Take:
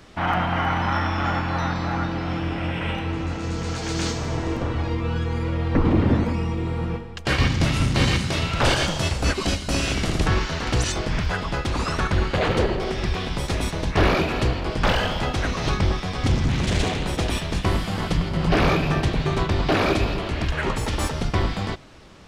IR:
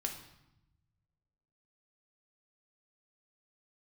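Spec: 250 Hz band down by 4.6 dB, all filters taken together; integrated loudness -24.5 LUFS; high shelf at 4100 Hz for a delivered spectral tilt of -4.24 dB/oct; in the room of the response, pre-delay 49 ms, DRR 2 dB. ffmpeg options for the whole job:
-filter_complex "[0:a]equalizer=f=250:t=o:g=-7,highshelf=f=4.1k:g=6.5,asplit=2[a][b];[1:a]atrim=start_sample=2205,adelay=49[c];[b][c]afir=irnorm=-1:irlink=0,volume=-3dB[d];[a][d]amix=inputs=2:normalize=0,volume=-3dB"

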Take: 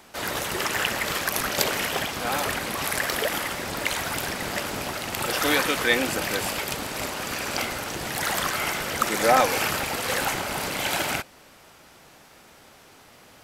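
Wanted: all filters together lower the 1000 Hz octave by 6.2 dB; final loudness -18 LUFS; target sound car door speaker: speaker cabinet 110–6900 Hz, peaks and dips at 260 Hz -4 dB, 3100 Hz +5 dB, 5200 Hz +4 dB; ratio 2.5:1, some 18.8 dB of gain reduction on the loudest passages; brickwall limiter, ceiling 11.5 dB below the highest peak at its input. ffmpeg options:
-af "equalizer=f=1k:t=o:g=-9,acompressor=threshold=-48dB:ratio=2.5,alimiter=level_in=8dB:limit=-24dB:level=0:latency=1,volume=-8dB,highpass=110,equalizer=f=260:t=q:w=4:g=-4,equalizer=f=3.1k:t=q:w=4:g=5,equalizer=f=5.2k:t=q:w=4:g=4,lowpass=f=6.9k:w=0.5412,lowpass=f=6.9k:w=1.3066,volume=25dB"

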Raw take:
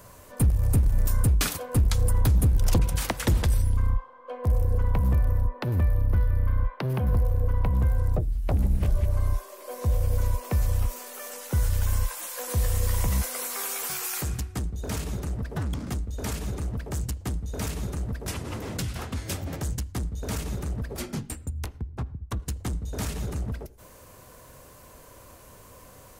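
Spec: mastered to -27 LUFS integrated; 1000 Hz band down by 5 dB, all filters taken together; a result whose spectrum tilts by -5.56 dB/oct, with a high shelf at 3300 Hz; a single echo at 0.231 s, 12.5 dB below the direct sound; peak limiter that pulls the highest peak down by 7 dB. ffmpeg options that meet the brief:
-af "equalizer=f=1k:t=o:g=-5.5,highshelf=f=3.3k:g=-7.5,alimiter=limit=-22dB:level=0:latency=1,aecho=1:1:231:0.237,volume=5dB"

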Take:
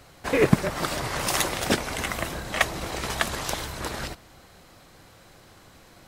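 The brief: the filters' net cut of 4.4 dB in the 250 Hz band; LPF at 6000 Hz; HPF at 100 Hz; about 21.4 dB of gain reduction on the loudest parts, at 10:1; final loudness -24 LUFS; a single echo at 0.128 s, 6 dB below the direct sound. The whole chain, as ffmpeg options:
-af "highpass=100,lowpass=6k,equalizer=f=250:t=o:g=-6,acompressor=threshold=-40dB:ratio=10,aecho=1:1:128:0.501,volume=19.5dB"

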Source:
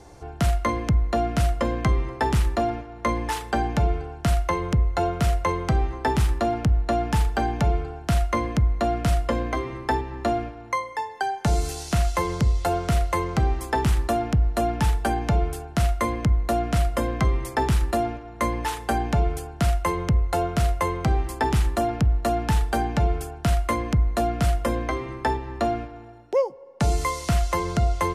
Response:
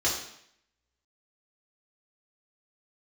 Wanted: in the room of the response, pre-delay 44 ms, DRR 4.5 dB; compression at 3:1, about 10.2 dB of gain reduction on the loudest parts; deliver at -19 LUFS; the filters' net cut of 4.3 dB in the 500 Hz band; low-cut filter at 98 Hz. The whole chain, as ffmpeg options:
-filter_complex "[0:a]highpass=98,equalizer=f=500:t=o:g=-6.5,acompressor=threshold=-34dB:ratio=3,asplit=2[a][b];[1:a]atrim=start_sample=2205,adelay=44[c];[b][c]afir=irnorm=-1:irlink=0,volume=-15dB[d];[a][d]amix=inputs=2:normalize=0,volume=16dB"

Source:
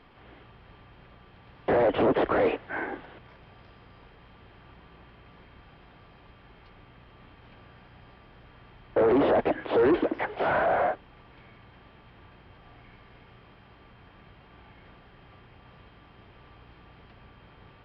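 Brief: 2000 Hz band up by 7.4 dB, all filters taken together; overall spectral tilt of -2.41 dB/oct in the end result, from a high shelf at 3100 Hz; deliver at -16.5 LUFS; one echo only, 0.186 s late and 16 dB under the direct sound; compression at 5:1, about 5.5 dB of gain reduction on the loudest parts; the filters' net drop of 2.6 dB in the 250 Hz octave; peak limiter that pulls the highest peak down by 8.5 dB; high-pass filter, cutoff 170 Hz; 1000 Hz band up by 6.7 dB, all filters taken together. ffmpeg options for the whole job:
-af "highpass=170,equalizer=f=250:t=o:g=-4,equalizer=f=1k:t=o:g=8.5,equalizer=f=2k:t=o:g=8.5,highshelf=f=3.1k:g=-7,acompressor=threshold=-23dB:ratio=5,alimiter=limit=-23.5dB:level=0:latency=1,aecho=1:1:186:0.158,volume=15dB"

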